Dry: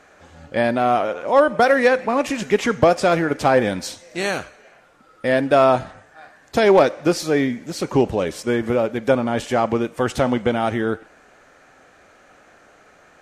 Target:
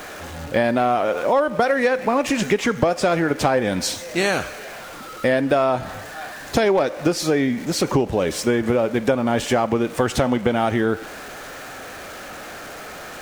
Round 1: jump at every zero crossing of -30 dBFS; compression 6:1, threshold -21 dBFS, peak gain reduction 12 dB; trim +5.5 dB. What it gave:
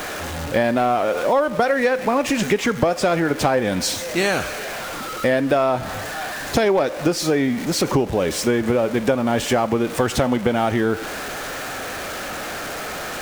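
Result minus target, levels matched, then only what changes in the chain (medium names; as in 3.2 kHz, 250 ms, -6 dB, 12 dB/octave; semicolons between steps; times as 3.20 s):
jump at every zero crossing: distortion +8 dB
change: jump at every zero crossing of -38 dBFS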